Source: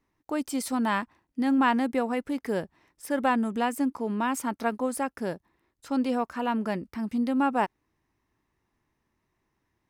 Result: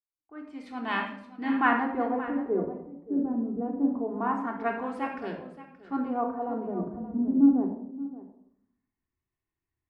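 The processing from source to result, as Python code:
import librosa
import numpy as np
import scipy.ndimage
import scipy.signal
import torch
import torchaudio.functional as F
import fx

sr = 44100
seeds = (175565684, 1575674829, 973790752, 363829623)

p1 = fx.fade_in_head(x, sr, length_s=1.02)
p2 = fx.filter_lfo_lowpass(p1, sr, shape='sine', hz=0.24, low_hz=290.0, high_hz=2900.0, q=1.7)
p3 = p2 + fx.echo_single(p2, sr, ms=575, db=-12.0, dry=0)
p4 = fx.room_shoebox(p3, sr, seeds[0], volume_m3=2500.0, walls='furnished', distance_m=3.4)
p5 = fx.band_widen(p4, sr, depth_pct=40)
y = p5 * librosa.db_to_amplitude(-5.5)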